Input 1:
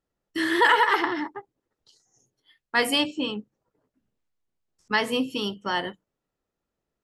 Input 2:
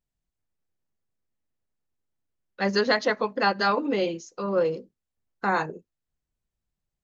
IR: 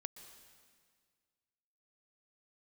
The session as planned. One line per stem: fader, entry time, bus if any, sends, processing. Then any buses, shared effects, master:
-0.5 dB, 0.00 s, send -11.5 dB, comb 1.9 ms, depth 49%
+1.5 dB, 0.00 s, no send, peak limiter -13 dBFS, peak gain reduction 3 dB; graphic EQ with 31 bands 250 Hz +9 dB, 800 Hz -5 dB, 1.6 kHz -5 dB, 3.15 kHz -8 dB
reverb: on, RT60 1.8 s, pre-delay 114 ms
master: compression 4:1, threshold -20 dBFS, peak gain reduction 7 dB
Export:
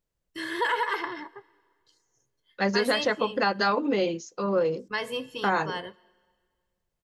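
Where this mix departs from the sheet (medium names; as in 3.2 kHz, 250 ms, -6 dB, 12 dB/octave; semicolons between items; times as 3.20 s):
stem 1 -0.5 dB -> -9.0 dB; stem 2: missing graphic EQ with 31 bands 250 Hz +9 dB, 800 Hz -5 dB, 1.6 kHz -5 dB, 3.15 kHz -8 dB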